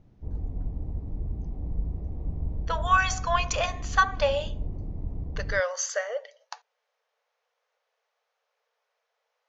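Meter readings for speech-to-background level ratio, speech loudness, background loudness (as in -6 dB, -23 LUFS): 9.0 dB, -27.0 LUFS, -36.0 LUFS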